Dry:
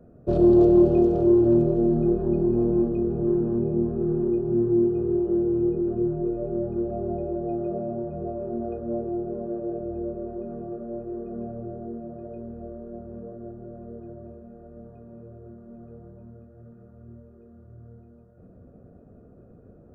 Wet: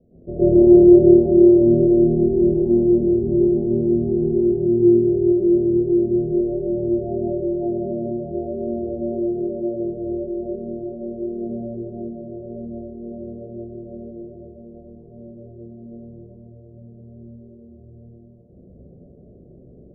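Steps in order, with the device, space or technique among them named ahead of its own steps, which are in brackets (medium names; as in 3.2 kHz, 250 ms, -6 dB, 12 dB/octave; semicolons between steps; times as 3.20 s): next room (low-pass 600 Hz 24 dB/octave; reverberation RT60 0.70 s, pre-delay 103 ms, DRR -10.5 dB); trim -7 dB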